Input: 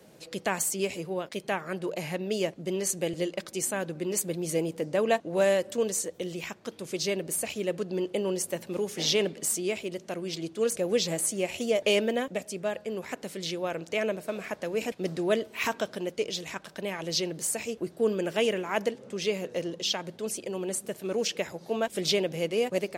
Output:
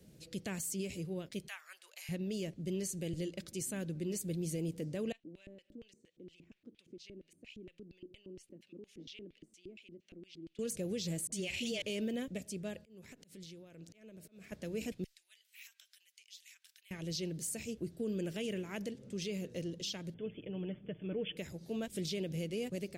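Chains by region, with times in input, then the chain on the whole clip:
1.48–2.09 HPF 1000 Hz 24 dB/oct + high shelf 11000 Hz +4.5 dB
5.12–10.59 compressor 2:1, threshold -40 dBFS + LFO band-pass square 4.3 Hz 300–2700 Hz
11.27–11.82 bell 3200 Hz +13 dB 2 oct + dispersion highs, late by 53 ms, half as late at 660 Hz
12.79–14.52 HPF 77 Hz + compressor 10:1, threshold -41 dBFS + auto swell 0.143 s
15.04–16.91 high shelf 9300 Hz +10 dB + compressor 2.5:1, threshold -40 dBFS + ladder high-pass 1600 Hz, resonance 25%
20.14–21.37 brick-wall FIR low-pass 3500 Hz + comb 6.6 ms, depth 43%
whole clip: passive tone stack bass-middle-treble 10-0-1; limiter -43.5 dBFS; gain +14 dB

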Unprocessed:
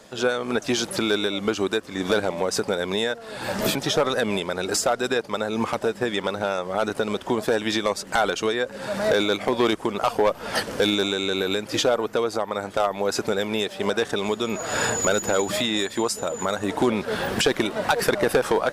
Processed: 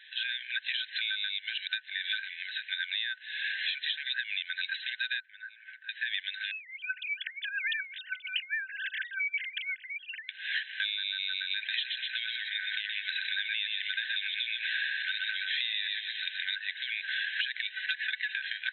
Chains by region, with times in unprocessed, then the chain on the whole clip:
5.2–5.89 upward compressor, threshold -27 dBFS + band-pass 1300 Hz, Q 5.6 + air absorption 90 m
6.51–10.29 sine-wave speech + tilt +2.5 dB/oct + negative-ratio compressor -29 dBFS
11.56–16.56 HPF 530 Hz + feedback echo 0.123 s, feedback 35%, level -5.5 dB + fast leveller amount 50%
17.86–18.32 expander -27 dBFS + comb 4.1 ms, depth 70%
whole clip: FFT band-pass 1500–4100 Hz; compressor 10:1, threshold -33 dBFS; gain +4 dB

